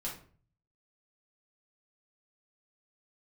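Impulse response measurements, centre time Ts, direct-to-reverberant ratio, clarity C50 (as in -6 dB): 28 ms, -5.0 dB, 6.5 dB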